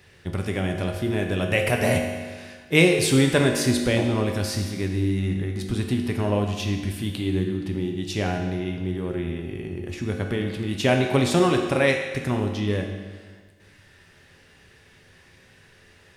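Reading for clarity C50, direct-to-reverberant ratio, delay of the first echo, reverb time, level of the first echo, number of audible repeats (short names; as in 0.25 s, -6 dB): 5.0 dB, 2.0 dB, none, 1.5 s, none, none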